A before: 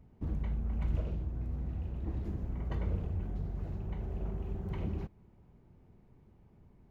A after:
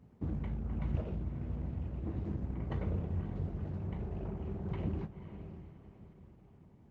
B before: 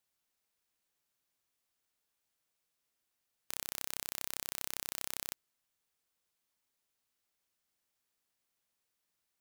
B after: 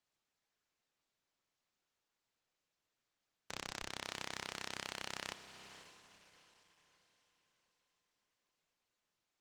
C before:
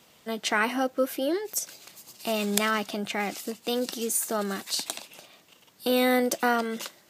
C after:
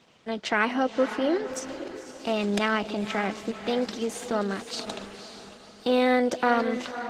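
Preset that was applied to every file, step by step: partial rectifier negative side -3 dB; high-pass 81 Hz 12 dB/octave; distance through air 110 m; echo that smears into a reverb 528 ms, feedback 42%, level -10.5 dB; trim +3.5 dB; Opus 16 kbps 48 kHz

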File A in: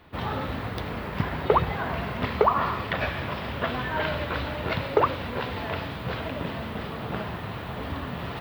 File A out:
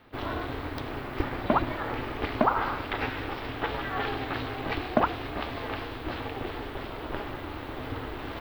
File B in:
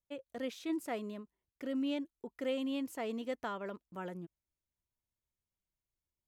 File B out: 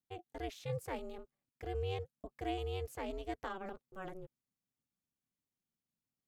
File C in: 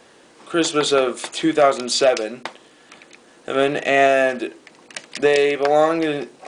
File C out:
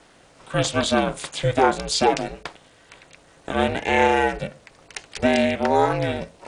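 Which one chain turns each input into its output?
ring modulator 190 Hz

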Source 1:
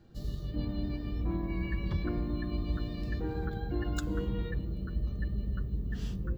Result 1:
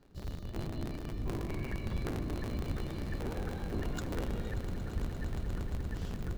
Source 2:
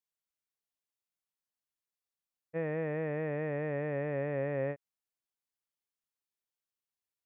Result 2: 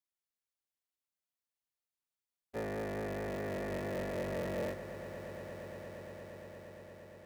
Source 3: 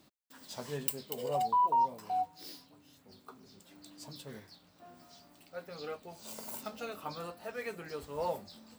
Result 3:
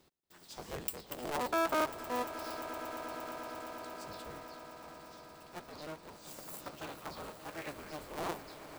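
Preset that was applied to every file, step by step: cycle switcher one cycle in 3, inverted; echo with a slow build-up 116 ms, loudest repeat 8, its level -17 dB; trim -4 dB

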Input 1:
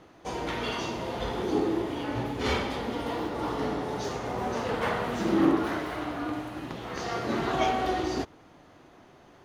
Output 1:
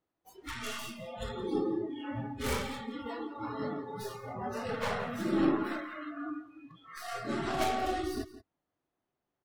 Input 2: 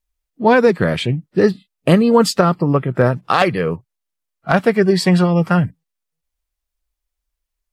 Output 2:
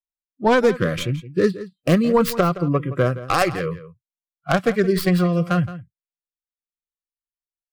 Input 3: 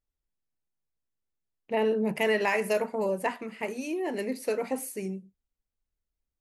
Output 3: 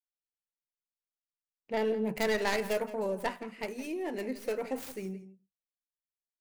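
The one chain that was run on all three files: tracing distortion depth 0.23 ms; spectral noise reduction 28 dB; echo from a far wall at 29 m, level -15 dB; trim -4.5 dB

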